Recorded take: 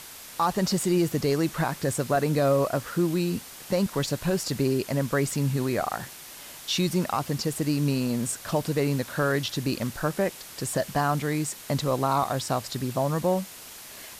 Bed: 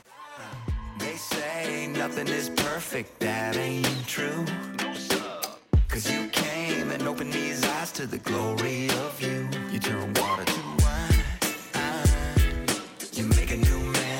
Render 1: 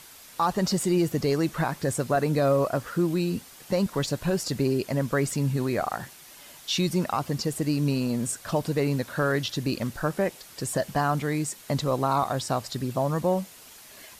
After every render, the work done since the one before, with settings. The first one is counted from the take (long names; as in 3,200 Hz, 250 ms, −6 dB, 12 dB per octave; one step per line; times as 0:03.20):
broadband denoise 6 dB, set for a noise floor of −44 dBFS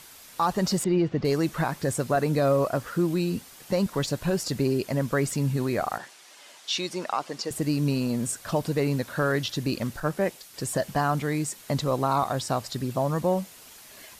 0:00.84–0:01.25: Bessel low-pass filter 2,900 Hz, order 4
0:05.98–0:07.51: band-pass filter 390–7,900 Hz
0:10.00–0:10.54: multiband upward and downward expander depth 70%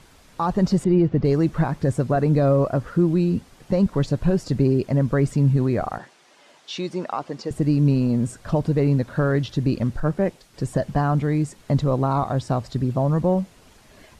low-pass filter 11,000 Hz 12 dB per octave
spectral tilt −3 dB per octave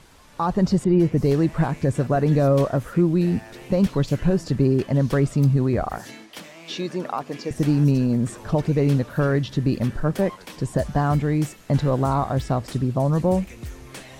mix in bed −14 dB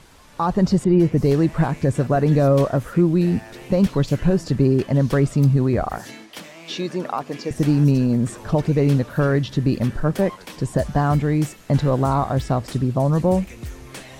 level +2 dB